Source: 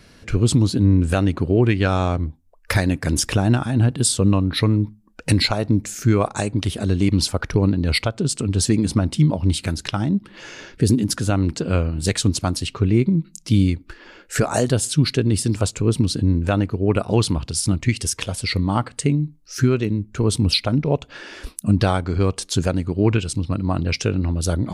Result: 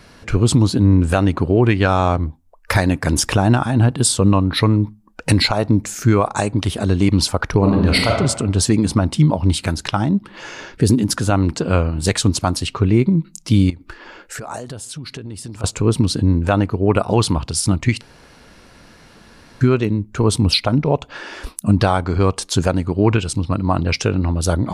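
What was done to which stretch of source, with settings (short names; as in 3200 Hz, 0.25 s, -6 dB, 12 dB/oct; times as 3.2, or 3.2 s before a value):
7.57–8.16 reverb throw, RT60 0.96 s, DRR 0.5 dB
13.7–15.64 compressor 8:1, threshold -31 dBFS
18.01–19.61 room tone
whole clip: bell 940 Hz +7 dB 1.2 oct; maximiser +6 dB; gain -3.5 dB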